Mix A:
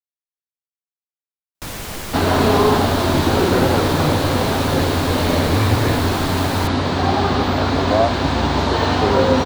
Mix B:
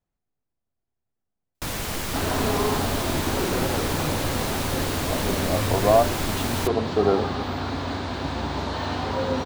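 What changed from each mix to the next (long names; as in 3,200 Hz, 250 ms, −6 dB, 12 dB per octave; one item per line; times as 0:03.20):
speech: entry −2.05 s
second sound −10.0 dB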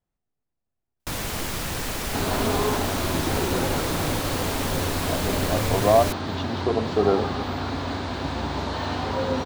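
first sound: entry −0.55 s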